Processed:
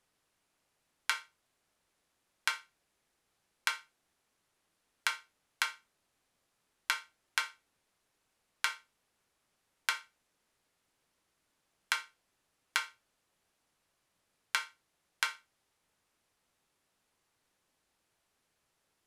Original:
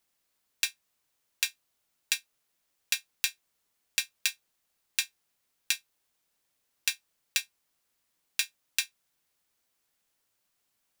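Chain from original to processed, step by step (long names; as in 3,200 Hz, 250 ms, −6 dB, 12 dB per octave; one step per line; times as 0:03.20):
wrong playback speed 78 rpm record played at 45 rpm
high-shelf EQ 2,700 Hz −9 dB
downward compressor 3 to 1, threshold −32 dBFS, peak gain reduction 6 dB
level +3.5 dB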